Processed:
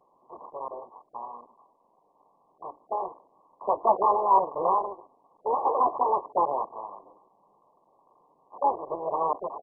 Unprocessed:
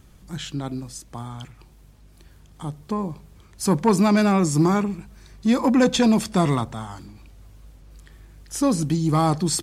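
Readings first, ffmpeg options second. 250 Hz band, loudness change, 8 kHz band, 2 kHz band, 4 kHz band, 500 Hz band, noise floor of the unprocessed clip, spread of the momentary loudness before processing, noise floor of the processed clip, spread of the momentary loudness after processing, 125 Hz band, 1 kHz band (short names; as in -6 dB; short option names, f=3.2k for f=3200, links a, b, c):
-25.0 dB, -5.5 dB, under -40 dB, under -40 dB, under -40 dB, -4.0 dB, -51 dBFS, 18 LU, -67 dBFS, 20 LU, under -30 dB, +3.5 dB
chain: -af "flanger=delay=9.5:depth=1.4:regen=-31:speed=0.53:shape=sinusoidal,aresample=16000,aeval=exprs='abs(val(0))':c=same,aresample=44100,highpass=1.2k,acontrast=76,volume=8dB" -ar 24000 -c:a mp2 -b:a 8k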